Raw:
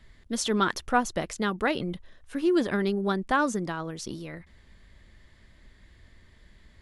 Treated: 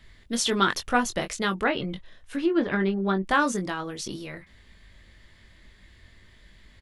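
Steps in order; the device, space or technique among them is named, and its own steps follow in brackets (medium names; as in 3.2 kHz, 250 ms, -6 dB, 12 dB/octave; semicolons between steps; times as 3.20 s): doubling 21 ms -6.5 dB; 1.56–3.25 s: low-pass that closes with the level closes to 1.9 kHz, closed at -19.5 dBFS; presence and air boost (peaking EQ 2.9 kHz +5 dB 1.8 oct; treble shelf 10 kHz +5 dB)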